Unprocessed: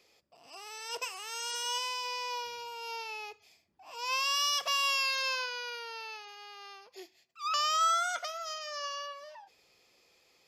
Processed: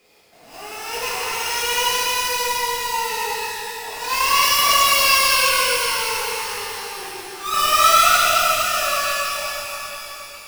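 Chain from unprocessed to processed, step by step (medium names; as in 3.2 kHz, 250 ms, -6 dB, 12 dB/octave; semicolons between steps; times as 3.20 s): square wave that keeps the level; pitch-shifted reverb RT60 3.9 s, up +12 st, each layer -8 dB, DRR -10.5 dB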